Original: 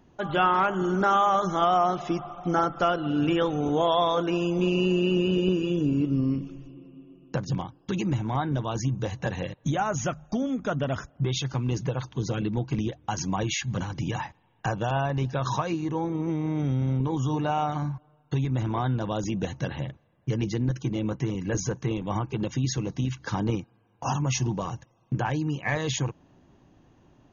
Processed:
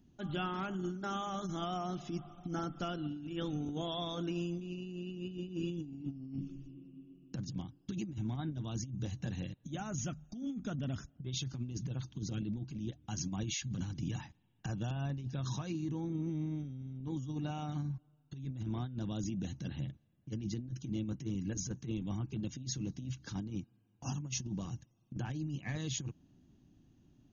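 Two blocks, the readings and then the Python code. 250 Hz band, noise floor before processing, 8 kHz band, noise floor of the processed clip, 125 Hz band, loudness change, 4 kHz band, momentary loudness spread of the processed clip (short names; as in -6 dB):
-11.0 dB, -63 dBFS, n/a, -70 dBFS, -10.5 dB, -12.5 dB, -10.0 dB, 6 LU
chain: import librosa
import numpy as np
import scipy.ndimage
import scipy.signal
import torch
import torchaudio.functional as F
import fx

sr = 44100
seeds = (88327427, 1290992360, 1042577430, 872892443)

y = fx.graphic_eq(x, sr, hz=(250, 500, 1000, 2000), db=(4, -11, -12, -7))
y = fx.over_compress(y, sr, threshold_db=-29.0, ratio=-0.5)
y = y * 10.0 ** (-8.0 / 20.0)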